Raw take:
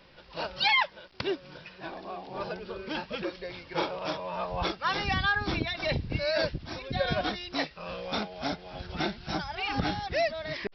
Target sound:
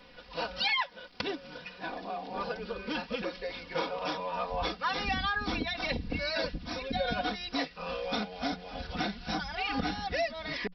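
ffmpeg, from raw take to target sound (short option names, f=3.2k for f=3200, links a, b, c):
-af "bandreject=f=60:t=h:w=6,bandreject=f=120:t=h:w=6,bandreject=f=180:t=h:w=6,aecho=1:1:4.1:0.78,acompressor=threshold=-31dB:ratio=2"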